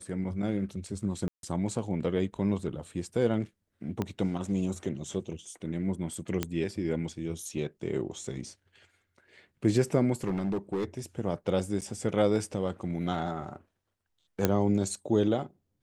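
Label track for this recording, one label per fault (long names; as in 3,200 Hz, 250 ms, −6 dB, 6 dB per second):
1.280000	1.430000	drop-out 152 ms
4.020000	4.020000	click −17 dBFS
6.430000	6.430000	click −13 dBFS
10.240000	10.840000	clipping −25.5 dBFS
11.810000	11.820000	drop-out 7.5 ms
14.450000	14.450000	click −9 dBFS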